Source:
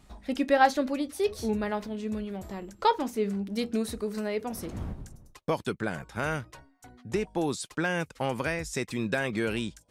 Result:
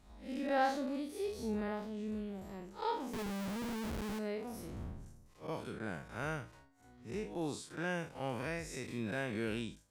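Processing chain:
spectrum smeared in time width 116 ms
0:03.13–0:04.19: comparator with hysteresis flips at −36.5 dBFS
level −6.5 dB

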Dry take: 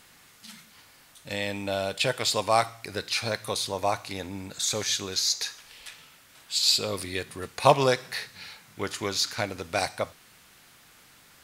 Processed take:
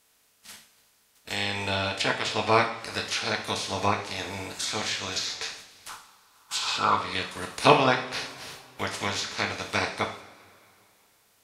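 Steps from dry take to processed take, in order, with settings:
ceiling on every frequency bin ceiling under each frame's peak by 17 dB
noise gate −46 dBFS, range −11 dB
0:05.89–0:06.95: flat-topped bell 1,100 Hz +14 dB 1 octave
treble cut that deepens with the level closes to 2,700 Hz, closed at −22 dBFS
coupled-rooms reverb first 0.48 s, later 2.8 s, from −20 dB, DRR 2 dB

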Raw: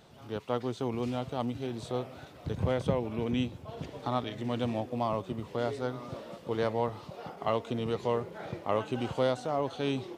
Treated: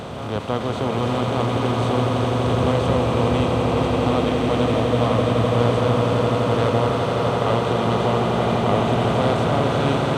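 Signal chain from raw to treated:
compressor on every frequency bin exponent 0.4
echo that builds up and dies away 84 ms, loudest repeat 8, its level −8.5 dB
level +2 dB

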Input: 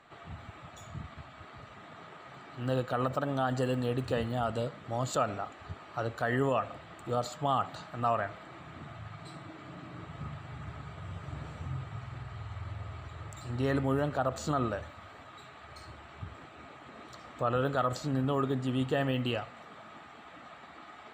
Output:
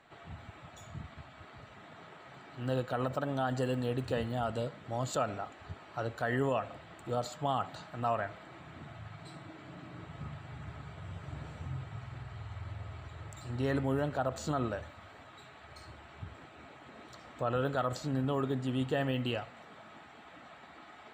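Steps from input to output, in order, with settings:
notch filter 1,200 Hz, Q 12
level −2 dB

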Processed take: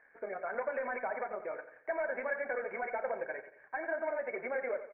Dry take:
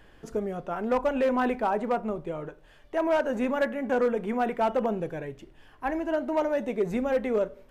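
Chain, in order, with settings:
high-pass filter 900 Hz 6 dB per octave
spectral tilt +4 dB per octave
leveller curve on the samples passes 2
downward compressor, threshold −28 dBFS, peak gain reduction 7.5 dB
Chebyshev low-pass with heavy ripple 2,300 Hz, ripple 9 dB
time stretch by overlap-add 0.64×, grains 56 ms
repeating echo 89 ms, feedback 41%, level −11 dB
on a send at −17.5 dB: convolution reverb, pre-delay 20 ms

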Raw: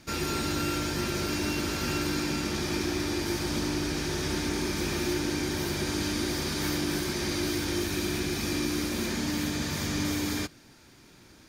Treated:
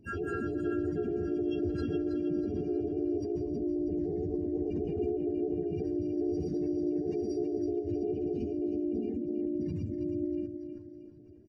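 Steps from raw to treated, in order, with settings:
expanding power law on the bin magnitudes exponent 3.9
repeating echo 320 ms, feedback 41%, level −8 dB
pitch-shifted copies added +3 semitones 0 dB, +12 semitones −17 dB
level −6 dB

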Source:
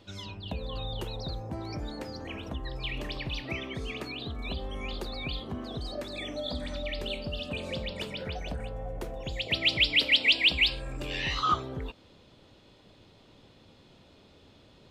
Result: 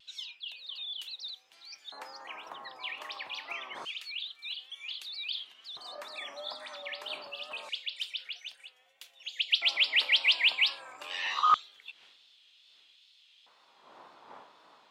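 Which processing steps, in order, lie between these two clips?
wind on the microphone 250 Hz −42 dBFS
auto-filter high-pass square 0.26 Hz 990–3,100 Hz
tape wow and flutter 69 cents
level −3 dB

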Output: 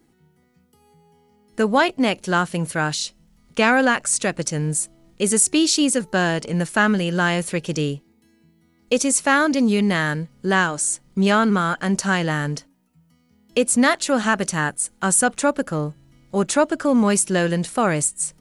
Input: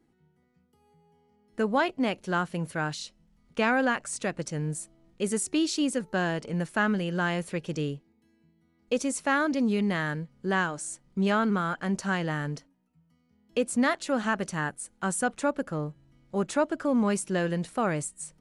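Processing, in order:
high-shelf EQ 4,200 Hz +9 dB
level +7.5 dB

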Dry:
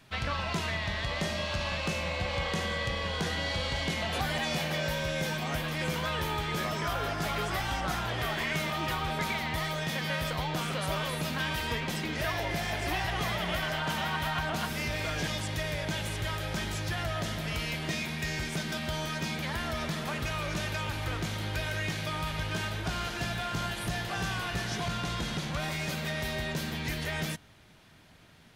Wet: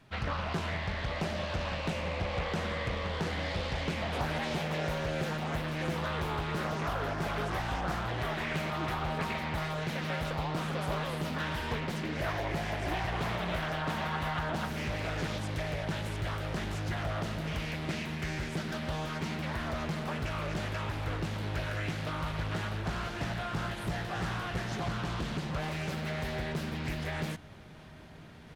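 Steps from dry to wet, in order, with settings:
high-shelf EQ 2,100 Hz −8.5 dB
reversed playback
upward compression, threshold −43 dBFS
reversed playback
slap from a distant wall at 280 metres, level −20 dB
highs frequency-modulated by the lows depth 0.6 ms

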